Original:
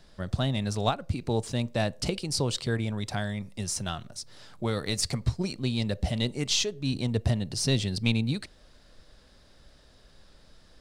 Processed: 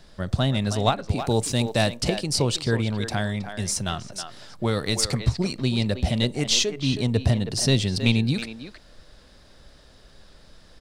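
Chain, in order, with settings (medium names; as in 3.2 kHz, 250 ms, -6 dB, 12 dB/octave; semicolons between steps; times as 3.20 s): 1.20–1.95 s: treble shelf 6 kHz -> 3.6 kHz +11 dB; speakerphone echo 320 ms, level -8 dB; trim +5 dB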